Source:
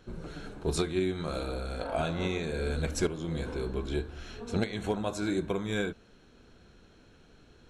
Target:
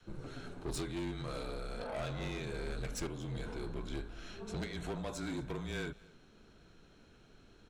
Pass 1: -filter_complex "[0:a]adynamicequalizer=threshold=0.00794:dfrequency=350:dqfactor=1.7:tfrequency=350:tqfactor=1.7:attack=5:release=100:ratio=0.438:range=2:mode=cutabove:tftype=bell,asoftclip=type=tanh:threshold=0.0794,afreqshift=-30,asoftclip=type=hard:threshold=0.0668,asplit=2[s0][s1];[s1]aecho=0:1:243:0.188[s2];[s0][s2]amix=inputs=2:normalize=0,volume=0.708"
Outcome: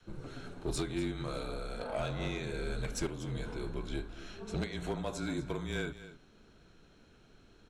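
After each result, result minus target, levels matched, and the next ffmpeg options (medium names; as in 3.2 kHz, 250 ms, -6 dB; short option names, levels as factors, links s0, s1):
saturation: distortion -10 dB; echo-to-direct +9 dB
-filter_complex "[0:a]adynamicequalizer=threshold=0.00794:dfrequency=350:dqfactor=1.7:tfrequency=350:tqfactor=1.7:attack=5:release=100:ratio=0.438:range=2:mode=cutabove:tftype=bell,asoftclip=type=tanh:threshold=0.0266,afreqshift=-30,asoftclip=type=hard:threshold=0.0668,asplit=2[s0][s1];[s1]aecho=0:1:243:0.188[s2];[s0][s2]amix=inputs=2:normalize=0,volume=0.708"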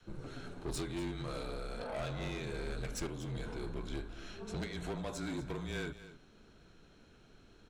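echo-to-direct +9 dB
-filter_complex "[0:a]adynamicequalizer=threshold=0.00794:dfrequency=350:dqfactor=1.7:tfrequency=350:tqfactor=1.7:attack=5:release=100:ratio=0.438:range=2:mode=cutabove:tftype=bell,asoftclip=type=tanh:threshold=0.0266,afreqshift=-30,asoftclip=type=hard:threshold=0.0668,asplit=2[s0][s1];[s1]aecho=0:1:243:0.0668[s2];[s0][s2]amix=inputs=2:normalize=0,volume=0.708"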